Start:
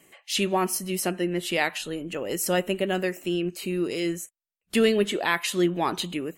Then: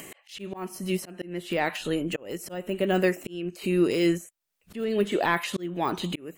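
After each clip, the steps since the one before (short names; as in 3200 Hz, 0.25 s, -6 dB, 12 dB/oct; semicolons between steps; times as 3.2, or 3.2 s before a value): de-esser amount 100%; auto swell 0.544 s; in parallel at -2 dB: upward compressor, threshold -31 dBFS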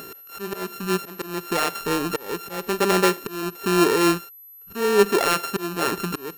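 sample sorter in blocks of 32 samples; small resonant body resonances 420/1800 Hz, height 10 dB, ringing for 45 ms; whine 12000 Hz -45 dBFS; gain +2.5 dB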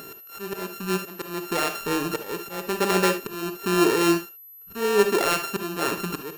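reverb, pre-delay 3 ms, DRR 8 dB; gain -2.5 dB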